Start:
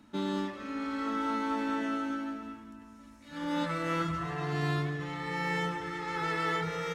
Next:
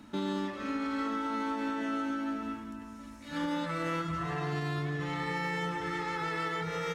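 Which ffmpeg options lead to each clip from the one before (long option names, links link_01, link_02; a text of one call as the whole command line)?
ffmpeg -i in.wav -af "alimiter=level_in=7dB:limit=-24dB:level=0:latency=1:release=390,volume=-7dB,volume=6dB" out.wav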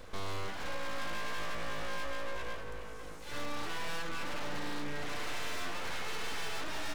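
ffmpeg -i in.wav -af "aeval=exprs='abs(val(0))':channel_layout=same,aeval=exprs='(tanh(28.2*val(0)+0.7)-tanh(0.7))/28.2':channel_layout=same,volume=9dB" out.wav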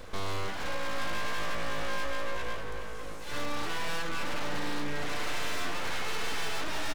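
ffmpeg -i in.wav -af "aecho=1:1:821:0.178,volume=4.5dB" out.wav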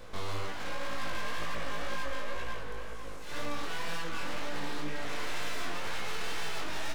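ffmpeg -i in.wav -af "flanger=delay=17:depth=6:speed=2" out.wav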